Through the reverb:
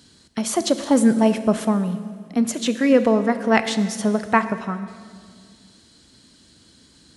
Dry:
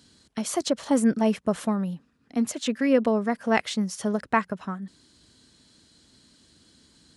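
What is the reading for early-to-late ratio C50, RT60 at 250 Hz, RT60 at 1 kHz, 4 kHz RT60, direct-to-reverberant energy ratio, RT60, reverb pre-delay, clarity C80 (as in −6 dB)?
11.5 dB, 2.4 s, 1.8 s, 1.8 s, 10.5 dB, 2.0 s, 24 ms, 13.0 dB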